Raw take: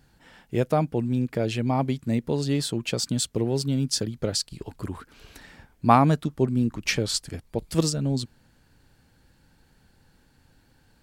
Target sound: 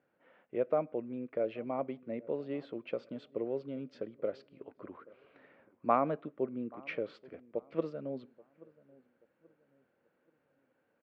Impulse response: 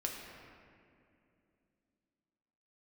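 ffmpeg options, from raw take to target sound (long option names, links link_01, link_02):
-filter_complex "[0:a]highpass=380,equalizer=frequency=550:width_type=q:width=4:gain=7,equalizer=frequency=860:width_type=q:width=4:gain=-9,equalizer=frequency=1700:width_type=q:width=4:gain=-8,lowpass=frequency=2100:width=0.5412,lowpass=frequency=2100:width=1.3066,asplit=2[link_01][link_02];[link_02]adelay=831,lowpass=frequency=1000:poles=1,volume=-22dB,asplit=2[link_03][link_04];[link_04]adelay=831,lowpass=frequency=1000:poles=1,volume=0.4,asplit=2[link_05][link_06];[link_06]adelay=831,lowpass=frequency=1000:poles=1,volume=0.4[link_07];[link_01][link_03][link_05][link_07]amix=inputs=4:normalize=0,asplit=2[link_08][link_09];[1:a]atrim=start_sample=2205,afade=type=out:start_time=0.21:duration=0.01,atrim=end_sample=9702,adelay=20[link_10];[link_09][link_10]afir=irnorm=-1:irlink=0,volume=-23dB[link_11];[link_08][link_11]amix=inputs=2:normalize=0,volume=-7dB"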